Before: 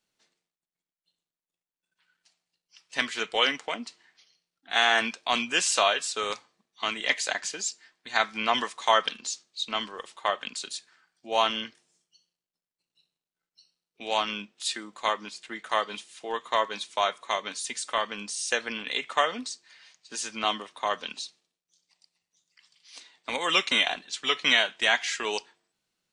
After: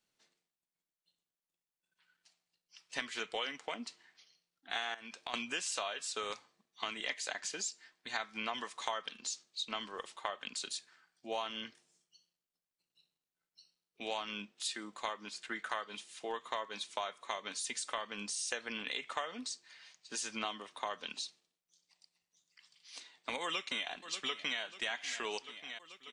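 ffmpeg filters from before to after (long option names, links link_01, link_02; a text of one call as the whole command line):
ffmpeg -i in.wav -filter_complex "[0:a]asettb=1/sr,asplit=3[link_01][link_02][link_03];[link_01]atrim=end=4.944[link_04];[link_02]atrim=start=4.94:end=5.34,asetpts=PTS-STARTPTS,afade=type=in:duration=0.004:curve=qsin,afade=type=out:start_time=0.396:duration=0.004:curve=qsin,acompressor=threshold=-34dB:ratio=6:attack=3.2:release=140:knee=1:detection=peak[link_05];[link_03]atrim=start=5.336[link_06];[link_04][link_05]acrossfade=duration=0.004:curve1=hsin:curve2=qsin[link_07];[link_07][link_06]acrossfade=duration=0.004:curve1=qsin:curve2=hsin,asettb=1/sr,asplit=3[link_08][link_09][link_10];[link_08]atrim=end=15.334[link_11];[link_09]atrim=start=15.33:end=15.87,asetpts=PTS-STARTPTS,afade=type=in:duration=0.004:curve=qsin,afade=type=out:start_time=0.536:duration=0.004:curve=qsin,equalizer=frequency=1500:width=2.9:gain=7[link_12];[link_10]atrim=start=15.866[link_13];[link_11][link_12]acrossfade=duration=0.004:curve1=hsin:curve2=qsin[link_14];[link_14][link_13]acrossfade=duration=0.004:curve1=qsin:curve2=hsin,asplit=2[link_15][link_16];[link_16]afade=type=in:start_time=23.43:duration=0.01,afade=type=out:start_time=24.6:duration=0.01,aecho=0:1:590|1180|1770|2360|2950|3540:0.125893|0.0818302|0.0531896|0.0345732|0.0224726|0.0146072[link_17];[link_15][link_17]amix=inputs=2:normalize=0,acompressor=threshold=-32dB:ratio=6,volume=-3dB" out.wav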